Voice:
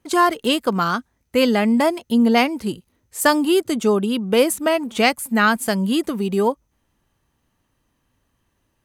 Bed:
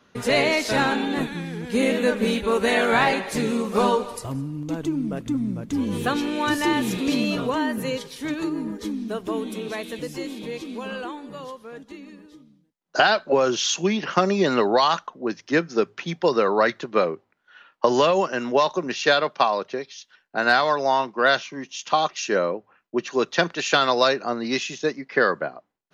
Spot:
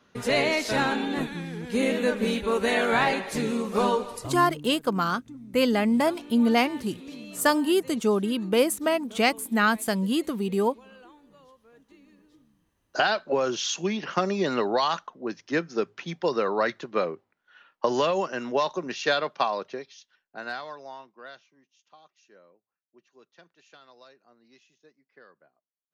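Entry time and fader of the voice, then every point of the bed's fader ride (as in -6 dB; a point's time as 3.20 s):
4.20 s, -5.5 dB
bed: 4.48 s -3.5 dB
4.75 s -18.5 dB
11.57 s -18.5 dB
12.97 s -5.5 dB
19.68 s -5.5 dB
21.93 s -34 dB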